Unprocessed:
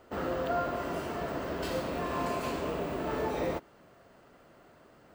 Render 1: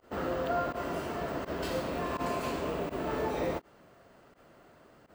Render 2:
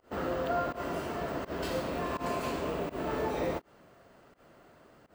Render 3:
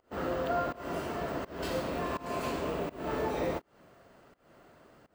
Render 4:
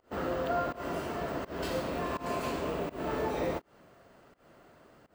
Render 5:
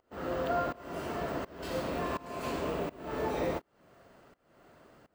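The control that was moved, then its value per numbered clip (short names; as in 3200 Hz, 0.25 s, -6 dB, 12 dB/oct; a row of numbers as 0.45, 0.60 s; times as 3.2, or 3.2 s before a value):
pump, release: 64, 115, 267, 179, 499 ms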